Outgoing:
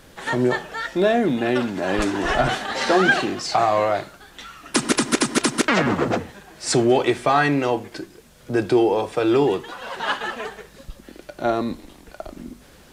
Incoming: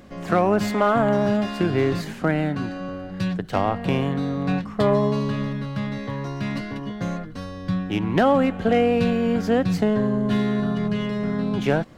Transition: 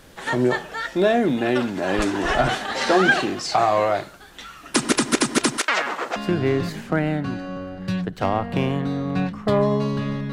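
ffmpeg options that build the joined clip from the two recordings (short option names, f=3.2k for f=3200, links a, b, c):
-filter_complex "[0:a]asettb=1/sr,asplit=3[a][b][c];[a]atrim=end=5.574[d];[b]atrim=start=5.57:end=6.16,asetpts=PTS-STARTPTS,afade=t=in:d=0.004:c=qsin,afade=t=out:st=0.586:d=0.004:c=qsin,highpass=740[e];[c]atrim=start=6.156[f];[d][e]acrossfade=d=0.004:c1=hsin:c2=qsin[g];[g][f]acrossfade=d=0.004:c1=qsin:c2=hsin,apad=whole_dur=10.32,atrim=end=10.32,atrim=end=6.162[h];[1:a]atrim=start=1.478:end=5.64[i];[h][i]acrossfade=d=0.004:c1=hsin:c2=hsin"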